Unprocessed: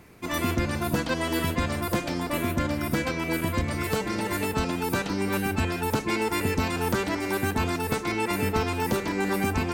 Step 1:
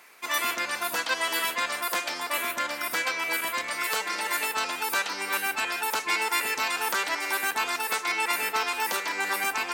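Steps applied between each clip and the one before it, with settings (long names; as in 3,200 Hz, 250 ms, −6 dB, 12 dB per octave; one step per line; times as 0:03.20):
high-pass filter 1,000 Hz 12 dB per octave
level +5 dB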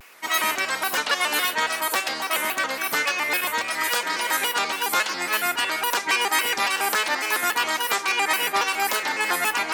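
pitch modulation by a square or saw wave square 3.6 Hz, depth 160 cents
level +4.5 dB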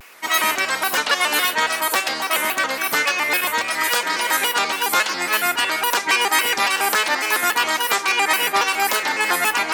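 floating-point word with a short mantissa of 8 bits
level +4 dB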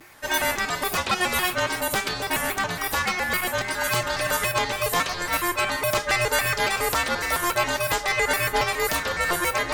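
frequency shifter −360 Hz
tuned comb filter 120 Hz, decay 0.22 s, harmonics odd, mix 50%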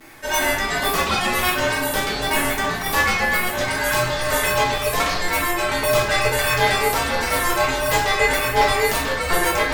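shaped tremolo saw down 1.4 Hz, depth 35%
rectangular room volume 130 cubic metres, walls mixed, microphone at 1.5 metres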